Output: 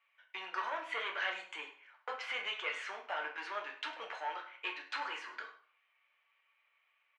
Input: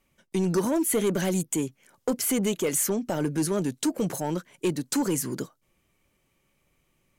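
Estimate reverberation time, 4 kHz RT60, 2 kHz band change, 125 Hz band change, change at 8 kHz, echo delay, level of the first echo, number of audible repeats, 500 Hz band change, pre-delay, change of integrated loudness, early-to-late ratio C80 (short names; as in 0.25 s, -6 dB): 0.50 s, 0.40 s, +2.5 dB, under -40 dB, -32.5 dB, 0.102 s, -15.5 dB, 1, -19.5 dB, 7 ms, -13.0 dB, 12.0 dB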